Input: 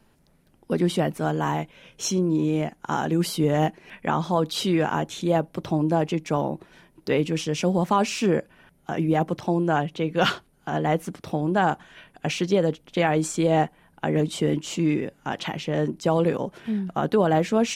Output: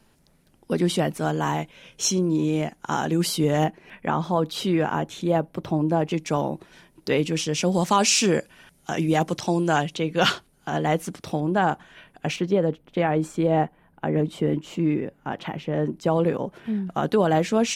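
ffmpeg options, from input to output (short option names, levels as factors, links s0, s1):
-af "asetnsamples=n=441:p=0,asendcmd='3.64 equalizer g -4;6.11 equalizer g 5.5;7.72 equalizer g 14;9.97 equalizer g 6;11.4 equalizer g -1.5;12.36 equalizer g -12.5;15.86 equalizer g -5.5;16.9 equalizer g 3.5',equalizer=f=6700:t=o:w=2.3:g=5"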